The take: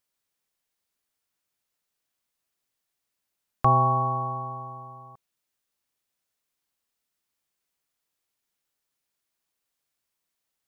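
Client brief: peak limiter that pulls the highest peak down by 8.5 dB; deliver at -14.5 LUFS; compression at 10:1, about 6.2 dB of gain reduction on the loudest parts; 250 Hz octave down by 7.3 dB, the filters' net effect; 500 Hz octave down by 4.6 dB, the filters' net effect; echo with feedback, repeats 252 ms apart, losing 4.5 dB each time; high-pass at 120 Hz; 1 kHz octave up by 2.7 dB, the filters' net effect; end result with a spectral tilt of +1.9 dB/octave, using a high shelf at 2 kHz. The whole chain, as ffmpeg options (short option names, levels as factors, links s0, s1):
-af "highpass=120,equalizer=f=250:t=o:g=-9,equalizer=f=500:t=o:g=-7,equalizer=f=1000:t=o:g=3.5,highshelf=f=2000:g=6.5,acompressor=threshold=0.1:ratio=10,alimiter=limit=0.106:level=0:latency=1,aecho=1:1:252|504|756|1008|1260|1512|1764|2016|2268:0.596|0.357|0.214|0.129|0.0772|0.0463|0.0278|0.0167|0.01,volume=3.76"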